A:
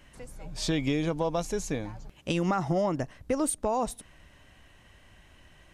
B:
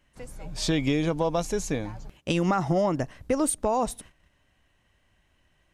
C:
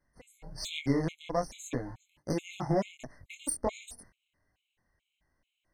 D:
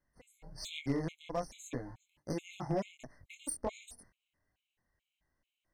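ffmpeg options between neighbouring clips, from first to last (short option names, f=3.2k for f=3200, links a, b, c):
-af "agate=range=-14dB:threshold=-50dB:ratio=16:detection=peak,volume=3dB"
-af "aeval=exprs='0.224*(cos(1*acos(clip(val(0)/0.224,-1,1)))-cos(1*PI/2))+0.0141*(cos(7*acos(clip(val(0)/0.224,-1,1)))-cos(7*PI/2))':c=same,flanger=delay=19.5:depth=6.6:speed=1.3,afftfilt=real='re*gt(sin(2*PI*2.3*pts/sr)*(1-2*mod(floor(b*sr/1024/2100),2)),0)':imag='im*gt(sin(2*PI*2.3*pts/sr)*(1-2*mod(floor(b*sr/1024/2100),2)),0)':win_size=1024:overlap=0.75"
-af "aeval=exprs='clip(val(0),-1,0.0841)':c=same,volume=-5.5dB"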